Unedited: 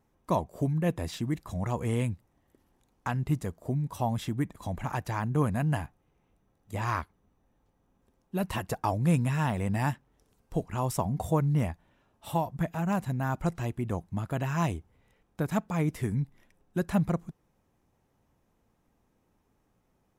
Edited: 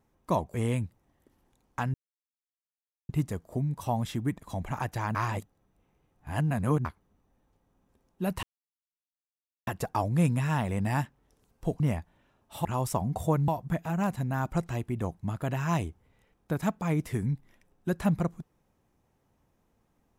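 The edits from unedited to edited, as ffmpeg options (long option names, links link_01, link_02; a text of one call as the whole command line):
ffmpeg -i in.wav -filter_complex "[0:a]asplit=9[link_01][link_02][link_03][link_04][link_05][link_06][link_07][link_08][link_09];[link_01]atrim=end=0.542[link_10];[link_02]atrim=start=1.818:end=3.22,asetpts=PTS-STARTPTS,afade=type=out:start_time=1.398:duration=0.004:curve=hsin,apad=pad_dur=1.15[link_11];[link_03]atrim=start=3.22:end=5.282,asetpts=PTS-STARTPTS,afade=type=in:duration=0.004:curve=hsin[link_12];[link_04]atrim=start=5.278:end=6.982,asetpts=PTS-STARTPTS,areverse[link_13];[link_05]atrim=start=6.978:end=8.56,asetpts=PTS-STARTPTS,afade=type=out:start_time=1.578:duration=0.004:curve=hsin,apad=pad_dur=1.24[link_14];[link_06]atrim=start=8.56:end=10.692,asetpts=PTS-STARTPTS,afade=type=in:duration=0.004:curve=hsin[link_15];[link_07]atrim=start=11.518:end=12.372[link_16];[link_08]atrim=start=10.688:end=11.522[link_17];[link_09]atrim=start=12.368[link_18];[link_11][link_12]concat=n=2:v=0:a=1[link_19];[link_10][link_19]acrossfade=duration=0.004:curve1=hsin:curve2=hsin[link_20];[link_20][link_13]acrossfade=duration=0.004:curve1=hsin:curve2=hsin[link_21];[link_14][link_15]concat=n=2:v=0:a=1[link_22];[link_21][link_22]acrossfade=duration=0.004:curve1=hsin:curve2=hsin[link_23];[link_23][link_16]acrossfade=duration=0.004:curve1=hsin:curve2=hsin[link_24];[link_24][link_17]acrossfade=duration=0.004:curve1=hsin:curve2=hsin[link_25];[link_25][link_18]acrossfade=duration=0.004:curve1=hsin:curve2=hsin" out.wav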